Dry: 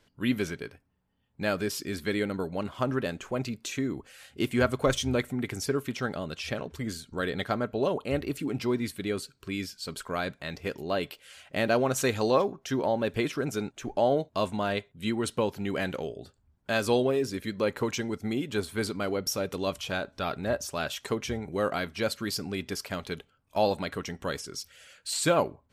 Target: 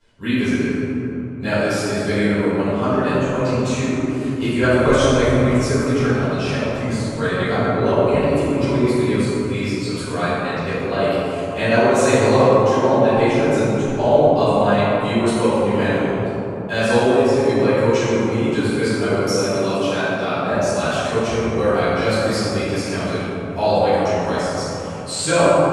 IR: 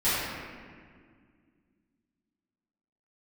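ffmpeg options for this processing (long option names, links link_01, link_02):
-filter_complex "[0:a]asettb=1/sr,asplit=3[link_01][link_02][link_03];[link_01]atrim=end=18.724[link_04];[link_02]atrim=start=18.72:end=20.52,asetpts=PTS-STARTPTS,afade=type=in:duration=0.004:curve=qsin,afade=type=out:start_time=1.796:duration=0.004:curve=qsin,highpass=frequency=120:width=0.5412,highpass=frequency=120:width=1.3066[link_05];[link_03]atrim=start=20.516[link_06];[link_04][link_05]acrossfade=duration=0.004:curve1=hsin:curve2=qsin[link_07];[link_07][link_06]acrossfade=duration=0.004:curve1=qsin:curve2=hsin[link_08];[1:a]atrim=start_sample=2205,asetrate=22050,aresample=44100[link_09];[link_08][link_09]afir=irnorm=-1:irlink=0,volume=-7.5dB"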